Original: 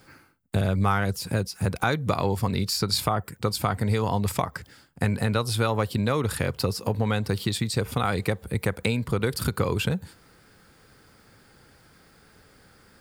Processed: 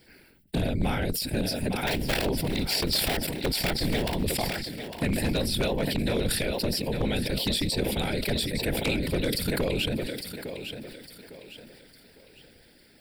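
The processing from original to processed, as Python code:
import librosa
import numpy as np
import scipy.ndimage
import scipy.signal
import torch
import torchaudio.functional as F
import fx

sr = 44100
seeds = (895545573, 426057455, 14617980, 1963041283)

y = fx.cycle_switch(x, sr, every=2, mode='inverted', at=(1.87, 4.24))
y = fx.peak_eq(y, sr, hz=6100.0, db=12.0, octaves=0.72)
y = fx.fixed_phaser(y, sr, hz=2800.0, stages=4)
y = fx.whisperise(y, sr, seeds[0])
y = fx.peak_eq(y, sr, hz=110.0, db=-5.0, octaves=1.8)
y = fx.echo_thinned(y, sr, ms=855, feedback_pct=38, hz=180.0, wet_db=-9)
y = 10.0 ** (-18.5 / 20.0) * (np.abs((y / 10.0 ** (-18.5 / 20.0) + 3.0) % 4.0 - 2.0) - 1.0)
y = fx.sustainer(y, sr, db_per_s=32.0)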